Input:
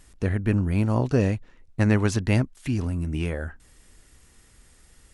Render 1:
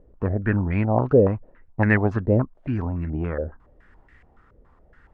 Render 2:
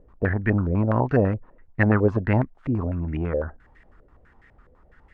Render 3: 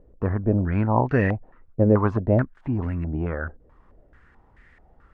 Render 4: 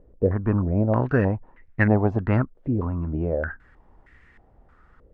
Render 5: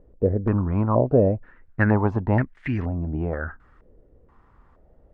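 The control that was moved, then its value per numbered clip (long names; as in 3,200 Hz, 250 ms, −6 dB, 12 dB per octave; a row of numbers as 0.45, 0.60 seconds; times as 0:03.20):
low-pass on a step sequencer, speed: 7.1, 12, 4.6, 3.2, 2.1 Hertz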